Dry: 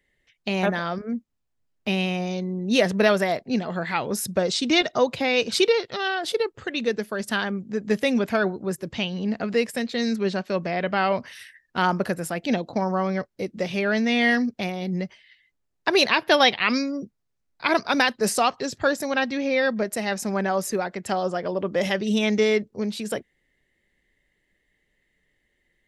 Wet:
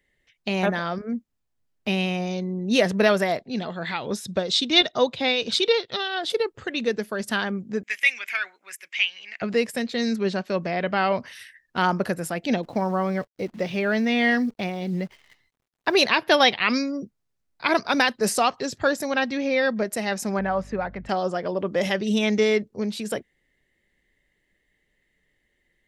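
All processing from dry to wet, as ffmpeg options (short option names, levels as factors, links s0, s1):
-filter_complex "[0:a]asettb=1/sr,asplit=3[s0][s1][s2];[s0]atrim=end=3.414[s3];[s1]atrim=start=3.41:end=6.3,asetpts=PTS-STARTPTS,afade=t=in:d=0.004:c=qsin,afade=t=out:st=2.886:d=0.004:c=qsin,lowpass=8200,equalizer=f=3600:w=3.6:g=9.5,tremolo=f=4.3:d=0.51[s4];[s2]atrim=start=6.296[s5];[s3][s4]acrossfade=d=0.004:c1=hsin:c2=qsin[s6];[s6][s5]acrossfade=d=0.004:c1=qsin:c2=hsin,asettb=1/sr,asplit=3[s7][s8][s9];[s7]atrim=end=7.834[s10];[s8]atrim=start=7.83:end=9.42,asetpts=PTS-STARTPTS,afade=t=in:d=0.004:c=qsin,afade=t=out:st=1.586:d=0.004:c=qsin,highpass=f=2200:t=q:w=4.4,equalizer=f=4200:w=3:g=-8[s11];[s9]atrim=start=9.416[s12];[s10][s11]acrossfade=d=0.004:c1=hsin:c2=qsin[s13];[s13][s12]acrossfade=d=0.004:c1=qsin:c2=hsin,asettb=1/sr,asplit=3[s14][s15][s16];[s14]atrim=end=12.634[s17];[s15]atrim=start=12.63:end=15.97,asetpts=PTS-STARTPTS,afade=t=in:d=0.004:c=qsin,afade=t=out:st=3.336:d=0.004:c=qsin,acrusher=bits=9:dc=4:mix=0:aa=0.000001,highshelf=f=6100:g=-9.5[s18];[s16]atrim=start=15.966[s19];[s17][s18]acrossfade=d=0.004:c1=hsin:c2=qsin[s20];[s20][s19]acrossfade=d=0.004:c1=qsin:c2=hsin,asettb=1/sr,asplit=3[s21][s22][s23];[s21]atrim=end=20.394[s24];[s22]atrim=start=20.39:end=21.09,asetpts=PTS-STARTPTS,afade=t=in:d=0.004:c=qsin,afade=t=out:st=0.696:d=0.004:c=qsin,lowpass=2300,equalizer=f=370:w=4:g=-7.5,aeval=exprs='val(0)+0.00708*(sin(2*PI*50*n/s)+sin(2*PI*2*50*n/s)/2+sin(2*PI*3*50*n/s)/3+sin(2*PI*4*50*n/s)/4+sin(2*PI*5*50*n/s)/5)':c=same[s25];[s23]atrim=start=21.086[s26];[s24][s25]acrossfade=d=0.004:c1=hsin:c2=qsin[s27];[s27][s26]acrossfade=d=0.004:c1=qsin:c2=hsin"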